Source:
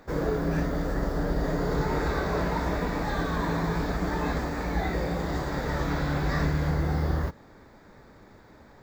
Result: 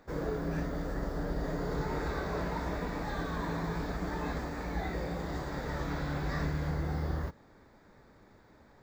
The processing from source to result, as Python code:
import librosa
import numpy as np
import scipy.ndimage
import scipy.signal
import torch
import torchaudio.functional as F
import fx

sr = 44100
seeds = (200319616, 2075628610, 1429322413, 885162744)

y = fx.peak_eq(x, sr, hz=16000.0, db=-7.5, octaves=0.2)
y = F.gain(torch.from_numpy(y), -7.0).numpy()